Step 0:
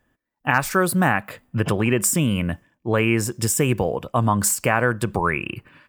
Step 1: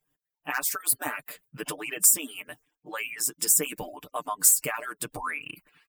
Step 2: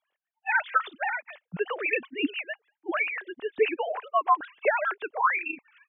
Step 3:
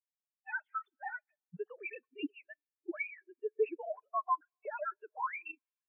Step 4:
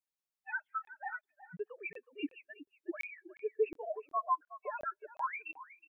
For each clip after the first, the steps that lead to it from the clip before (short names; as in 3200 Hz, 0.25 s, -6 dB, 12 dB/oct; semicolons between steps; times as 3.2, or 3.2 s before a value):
median-filter separation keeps percussive; pre-emphasis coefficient 0.8; comb 6.7 ms, depth 83%
sine-wave speech
limiter -21 dBFS, peak gain reduction 10.5 dB; plate-style reverb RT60 3 s, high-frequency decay 0.95×, DRR 19.5 dB; spectral expander 2.5:1; gain -1 dB
echo 0.368 s -15 dB; crackling interface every 0.36 s, samples 1024, zero, from 0.85